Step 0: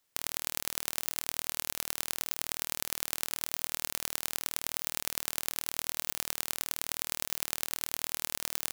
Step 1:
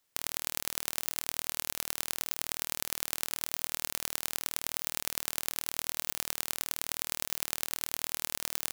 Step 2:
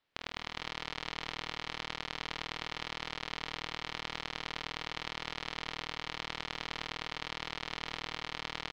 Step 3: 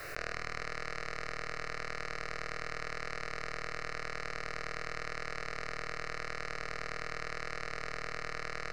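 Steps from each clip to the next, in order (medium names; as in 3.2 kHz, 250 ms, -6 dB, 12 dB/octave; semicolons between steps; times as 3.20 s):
no audible change
low-pass 3.9 kHz 24 dB/octave; on a send: multi-tap echo 47/180/237/454 ms -10/-6/-18.5/-3.5 dB
static phaser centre 900 Hz, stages 6; simulated room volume 120 m³, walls furnished, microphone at 0.43 m; level flattener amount 100%; trim +2.5 dB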